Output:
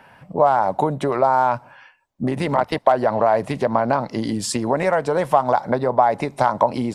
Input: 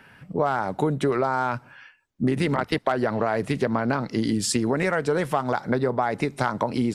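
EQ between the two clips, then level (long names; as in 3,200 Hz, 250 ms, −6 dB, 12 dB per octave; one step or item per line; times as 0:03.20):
flat-topped bell 760 Hz +9.5 dB 1.2 octaves
0.0 dB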